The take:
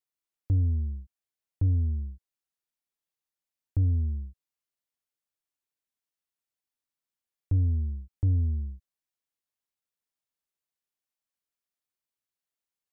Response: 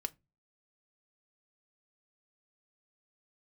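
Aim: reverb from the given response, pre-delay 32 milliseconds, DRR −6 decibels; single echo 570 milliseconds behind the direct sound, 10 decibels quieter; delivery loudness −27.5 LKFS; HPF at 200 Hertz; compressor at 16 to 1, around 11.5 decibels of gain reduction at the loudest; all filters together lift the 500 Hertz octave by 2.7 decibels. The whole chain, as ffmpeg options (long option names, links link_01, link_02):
-filter_complex "[0:a]highpass=200,equalizer=frequency=500:width_type=o:gain=3.5,acompressor=threshold=-44dB:ratio=16,aecho=1:1:570:0.316,asplit=2[link_01][link_02];[1:a]atrim=start_sample=2205,adelay=32[link_03];[link_02][link_03]afir=irnorm=-1:irlink=0,volume=6.5dB[link_04];[link_01][link_04]amix=inputs=2:normalize=0,volume=18dB"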